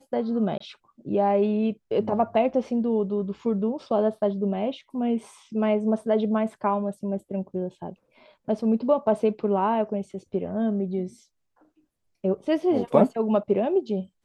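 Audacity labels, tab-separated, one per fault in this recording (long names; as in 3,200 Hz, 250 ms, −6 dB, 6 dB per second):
0.580000	0.600000	drop-out 24 ms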